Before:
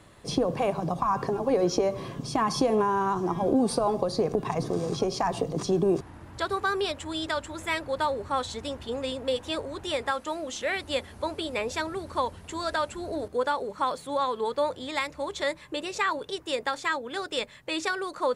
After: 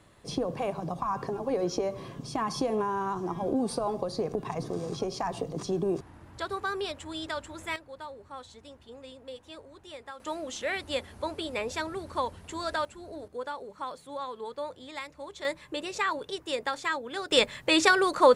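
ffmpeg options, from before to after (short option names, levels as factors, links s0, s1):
-af "asetnsamples=n=441:p=0,asendcmd='7.76 volume volume -15dB;10.2 volume volume -2.5dB;12.85 volume volume -9.5dB;15.45 volume volume -2dB;17.31 volume volume 8dB',volume=0.562"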